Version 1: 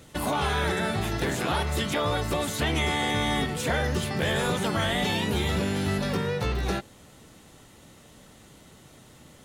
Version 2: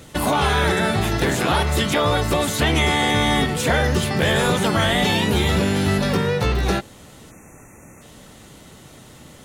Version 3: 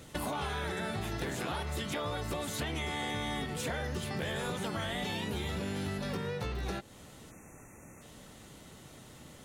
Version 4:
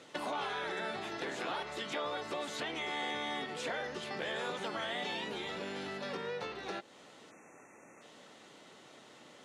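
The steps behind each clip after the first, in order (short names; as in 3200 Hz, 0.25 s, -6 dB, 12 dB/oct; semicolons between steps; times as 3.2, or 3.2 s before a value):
spectral delete 7.31–8.02, 2700–5700 Hz; gain +7.5 dB
compressor 4:1, threshold -26 dBFS, peak gain reduction 10 dB; gain -8 dB
BPF 340–5300 Hz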